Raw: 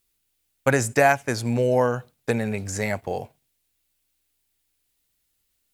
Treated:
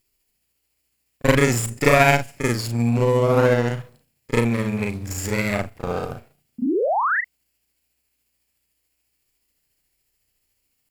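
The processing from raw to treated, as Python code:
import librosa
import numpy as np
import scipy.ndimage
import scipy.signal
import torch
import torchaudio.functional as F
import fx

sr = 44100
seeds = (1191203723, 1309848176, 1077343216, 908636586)

y = fx.lower_of_two(x, sr, delay_ms=0.41)
y = fx.spec_paint(y, sr, seeds[0], shape='rise', start_s=3.48, length_s=0.32, low_hz=220.0, high_hz=2100.0, level_db=-23.0)
y = fx.stretch_grains(y, sr, factor=1.9, grain_ms=144.0)
y = F.gain(torch.from_numpy(y), 4.0).numpy()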